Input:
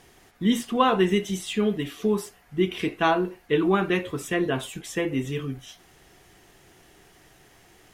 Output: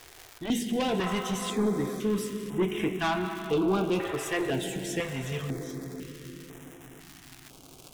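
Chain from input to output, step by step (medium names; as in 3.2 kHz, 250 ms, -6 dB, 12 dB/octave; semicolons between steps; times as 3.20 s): reverberation RT60 4.4 s, pre-delay 99 ms, DRR 8.5 dB; crackle 270 per s -33 dBFS; saturation -20 dBFS, distortion -11 dB; step-sequenced notch 2 Hz 200–4500 Hz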